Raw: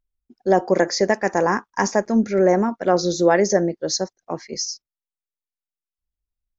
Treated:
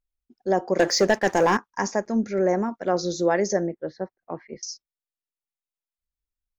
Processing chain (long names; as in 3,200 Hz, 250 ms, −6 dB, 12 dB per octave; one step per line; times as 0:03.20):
0:00.79–0:01.57: leveller curve on the samples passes 2
0:03.67–0:04.63: low-pass filter 2,400 Hz 24 dB per octave
level −5.5 dB